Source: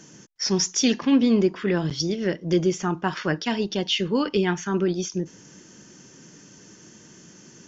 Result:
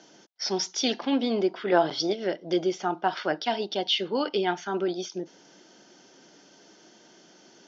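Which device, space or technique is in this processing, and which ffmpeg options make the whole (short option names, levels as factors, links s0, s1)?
phone earpiece: -filter_complex "[0:a]highpass=470,equalizer=f=470:t=q:w=4:g=-4,equalizer=f=710:t=q:w=4:g=6,equalizer=f=1100:t=q:w=4:g=-9,equalizer=f=1800:t=q:w=4:g=-9,equalizer=f=2600:t=q:w=4:g=-8,lowpass=f=4500:w=0.5412,lowpass=f=4500:w=1.3066,asettb=1/sr,asplit=3[s0][s1][s2];[s0]atrim=end=1.724[s3];[s1]atrim=start=1.72:end=2.13,asetpts=PTS-STARTPTS,afade=t=in:d=0.004:c=qsin,afade=t=out:st=0.406:d=0.004:c=qsin,equalizer=f=930:w=0.49:g=10[s4];[s2]atrim=start=2.126[s5];[s3][s4]acrossfade=d=0.004:c1=hsin:c2=qsin[s6];[s6][s5]acrossfade=d=0.004:c1=qsin:c2=hsin,volume=1.41"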